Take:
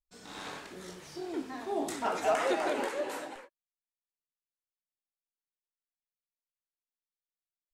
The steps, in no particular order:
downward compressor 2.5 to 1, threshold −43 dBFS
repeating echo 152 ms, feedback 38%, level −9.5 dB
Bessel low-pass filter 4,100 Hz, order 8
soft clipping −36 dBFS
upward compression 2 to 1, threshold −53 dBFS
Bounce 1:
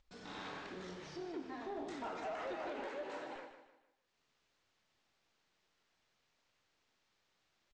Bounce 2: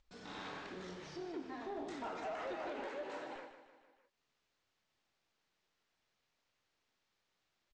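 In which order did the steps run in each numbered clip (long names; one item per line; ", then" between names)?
downward compressor, then soft clipping, then Bessel low-pass filter, then upward compression, then repeating echo
downward compressor, then soft clipping, then repeating echo, then upward compression, then Bessel low-pass filter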